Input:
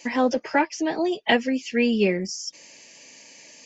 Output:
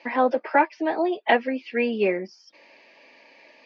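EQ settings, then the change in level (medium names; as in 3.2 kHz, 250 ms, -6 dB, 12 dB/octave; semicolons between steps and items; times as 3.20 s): distance through air 300 m; cabinet simulation 430–4400 Hz, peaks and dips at 460 Hz -3 dB, 1.9 kHz -3 dB, 3 kHz -7 dB; +5.5 dB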